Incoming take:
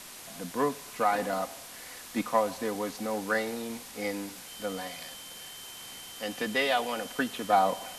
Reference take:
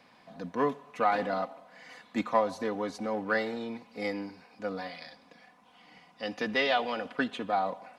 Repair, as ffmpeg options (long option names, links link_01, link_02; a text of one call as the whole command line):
ffmpeg -i in.wav -af "bandreject=frequency=3100:width=30,afwtdn=0.0063,asetnsamples=nb_out_samples=441:pad=0,asendcmd='7.5 volume volume -5.5dB',volume=0dB" out.wav